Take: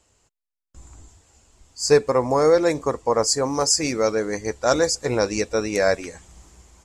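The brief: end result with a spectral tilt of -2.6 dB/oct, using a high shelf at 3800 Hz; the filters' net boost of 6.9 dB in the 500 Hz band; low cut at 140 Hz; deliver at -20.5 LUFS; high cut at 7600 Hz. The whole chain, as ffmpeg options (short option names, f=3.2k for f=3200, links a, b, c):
-af "highpass=140,lowpass=7.6k,equalizer=f=500:t=o:g=7.5,highshelf=f=3.8k:g=7.5,volume=-5.5dB"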